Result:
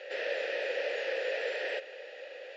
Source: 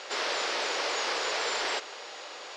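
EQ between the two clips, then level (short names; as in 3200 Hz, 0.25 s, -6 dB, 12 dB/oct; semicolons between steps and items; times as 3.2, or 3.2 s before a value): vowel filter e; HPF 180 Hz; high shelf 6300 Hz -7 dB; +8.0 dB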